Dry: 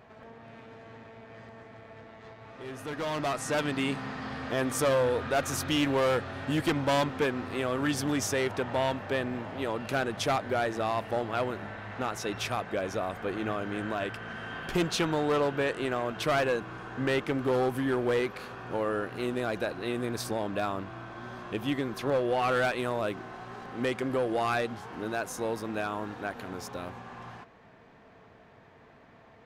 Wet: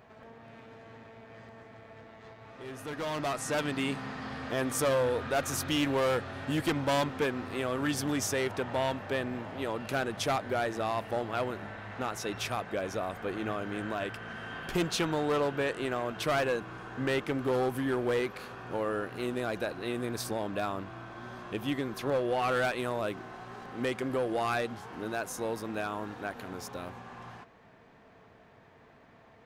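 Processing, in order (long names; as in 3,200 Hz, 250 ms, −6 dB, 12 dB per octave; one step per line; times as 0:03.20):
high-shelf EQ 8,600 Hz +4.5 dB
level −2 dB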